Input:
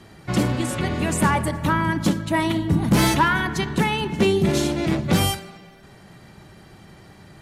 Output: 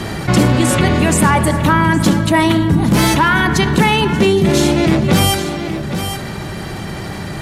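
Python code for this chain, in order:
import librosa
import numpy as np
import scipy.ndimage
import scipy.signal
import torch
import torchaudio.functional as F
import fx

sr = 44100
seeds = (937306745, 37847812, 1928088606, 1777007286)

p1 = fx.rider(x, sr, range_db=10, speed_s=0.5)
p2 = p1 + fx.echo_single(p1, sr, ms=818, db=-17.5, dry=0)
p3 = fx.env_flatten(p2, sr, amount_pct=50)
y = p3 * librosa.db_to_amplitude(5.0)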